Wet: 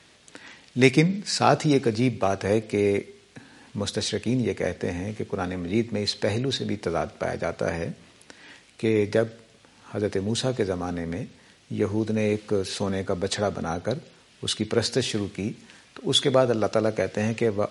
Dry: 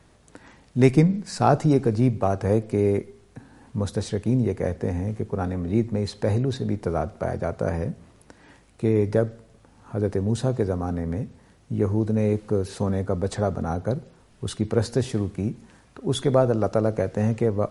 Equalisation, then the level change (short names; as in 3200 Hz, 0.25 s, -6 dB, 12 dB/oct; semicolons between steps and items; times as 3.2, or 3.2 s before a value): weighting filter D; 0.0 dB